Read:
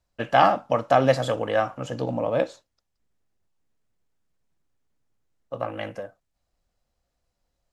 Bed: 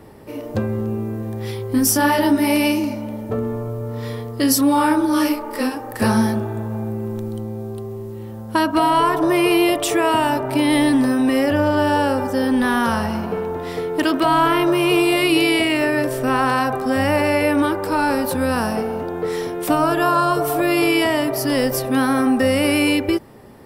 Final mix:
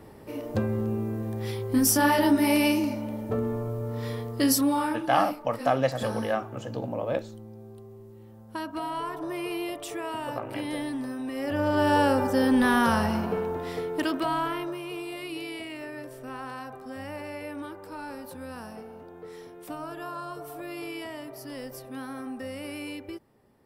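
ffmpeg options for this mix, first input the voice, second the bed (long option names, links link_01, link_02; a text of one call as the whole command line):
ffmpeg -i stem1.wav -i stem2.wav -filter_complex "[0:a]adelay=4750,volume=-5.5dB[link_01];[1:a]volume=8dB,afade=type=out:start_time=4.42:duration=0.63:silence=0.266073,afade=type=in:start_time=11.35:duration=0.64:silence=0.223872,afade=type=out:start_time=13.09:duration=1.74:silence=0.149624[link_02];[link_01][link_02]amix=inputs=2:normalize=0" out.wav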